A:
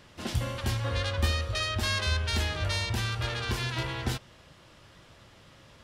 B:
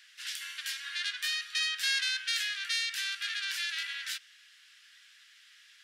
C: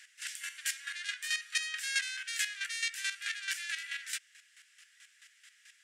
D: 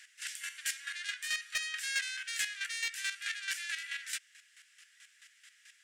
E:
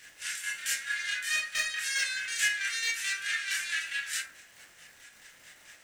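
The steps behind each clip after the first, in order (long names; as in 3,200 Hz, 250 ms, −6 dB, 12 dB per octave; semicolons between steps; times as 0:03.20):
elliptic high-pass filter 1,600 Hz, stop band 60 dB; level +2 dB
octave-band graphic EQ 1,000/2,000/4,000/8,000 Hz −4/+6/−6/+11 dB; square-wave tremolo 4.6 Hz, depth 65%, duty 25%
soft clipping −22 dBFS, distortion −18 dB
surface crackle 250 per second −48 dBFS; convolution reverb RT60 0.40 s, pre-delay 17 ms, DRR −6.5 dB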